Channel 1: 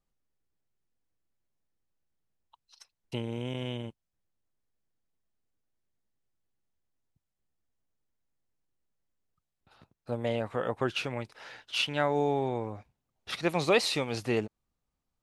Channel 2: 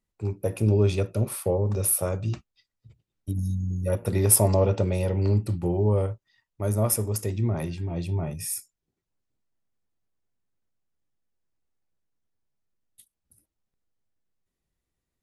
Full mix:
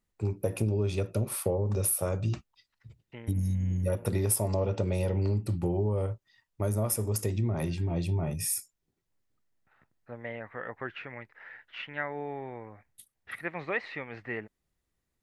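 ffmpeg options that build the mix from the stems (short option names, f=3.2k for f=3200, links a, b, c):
-filter_complex "[0:a]lowpass=f=1.9k:t=q:w=5.7,volume=-10dB[a];[1:a]volume=1.5dB,asplit=2[b][c];[c]apad=whole_len=671237[d];[a][d]sidechaincompress=threshold=-33dB:ratio=4:attack=16:release=1070[e];[e][b]amix=inputs=2:normalize=0,acompressor=threshold=-25dB:ratio=5"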